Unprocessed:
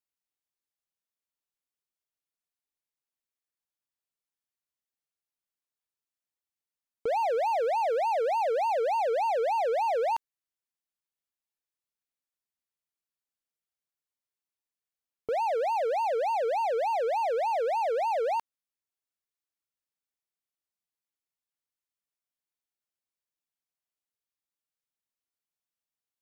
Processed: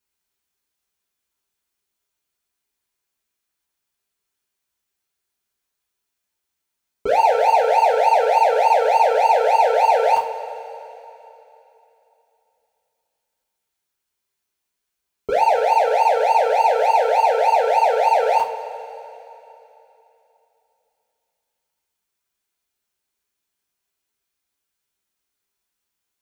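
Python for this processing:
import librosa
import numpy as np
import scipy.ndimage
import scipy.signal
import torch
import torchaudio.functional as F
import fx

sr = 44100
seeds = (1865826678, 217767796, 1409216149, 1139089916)

y = fx.rev_double_slope(x, sr, seeds[0], early_s=0.27, late_s=3.1, knee_db=-20, drr_db=-6.0)
y = F.gain(torch.from_numpy(y), 6.0).numpy()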